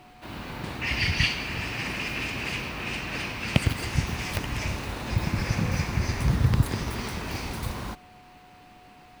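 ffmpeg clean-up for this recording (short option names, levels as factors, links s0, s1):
-af "bandreject=f=730:w=30"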